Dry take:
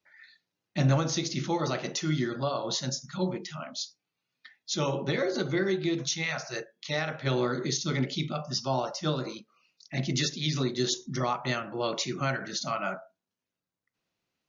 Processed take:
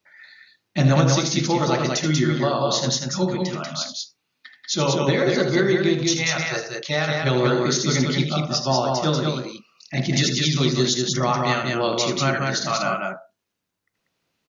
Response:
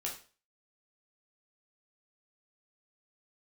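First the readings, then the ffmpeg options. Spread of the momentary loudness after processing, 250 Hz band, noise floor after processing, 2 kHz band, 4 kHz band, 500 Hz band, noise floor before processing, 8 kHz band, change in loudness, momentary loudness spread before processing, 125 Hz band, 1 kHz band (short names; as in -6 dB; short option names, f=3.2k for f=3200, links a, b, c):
8 LU, +9.0 dB, -76 dBFS, +9.0 dB, +9.0 dB, +9.0 dB, under -85 dBFS, n/a, +9.0 dB, 9 LU, +9.0 dB, +9.0 dB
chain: -af "aecho=1:1:78.72|189.5:0.355|0.708,volume=7dB"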